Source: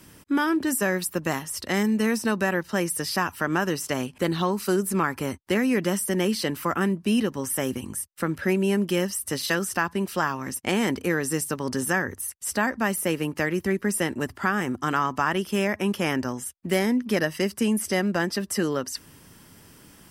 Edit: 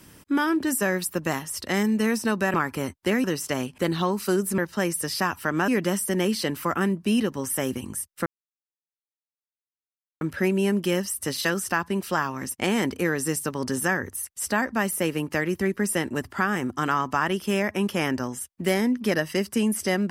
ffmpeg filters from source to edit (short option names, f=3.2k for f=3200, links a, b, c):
-filter_complex "[0:a]asplit=6[a][b][c][d][e][f];[a]atrim=end=2.542[g];[b]atrim=start=4.978:end=5.682[h];[c]atrim=start=3.638:end=4.982[i];[d]atrim=start=2.538:end=3.642[j];[e]atrim=start=5.678:end=8.26,asetpts=PTS-STARTPTS,afade=t=out:st=2.578:d=0.004:c=hsin,apad=pad_dur=1.95[k];[f]atrim=start=8.26,asetpts=PTS-STARTPTS,afade=t=in:d=0.004:c=hsin[l];[g][h]acrossfade=d=0.004:c1=hsin:c2=hsin[m];[m][i]acrossfade=d=0.004:c1=hsin:c2=hsin[n];[n][j]acrossfade=d=0.004:c1=hsin:c2=hsin[o];[k][l]concat=n=2:v=0:a=1[p];[o][p]acrossfade=d=0.004:c1=hsin:c2=hsin"